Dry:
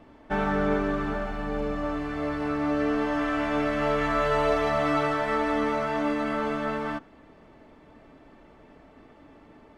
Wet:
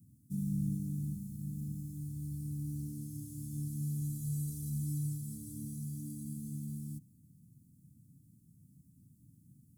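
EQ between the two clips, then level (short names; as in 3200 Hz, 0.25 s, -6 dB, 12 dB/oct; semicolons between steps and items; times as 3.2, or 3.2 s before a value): HPF 150 Hz 24 dB/oct; inverse Chebyshev band-stop 530–2500 Hz, stop band 80 dB; +17.0 dB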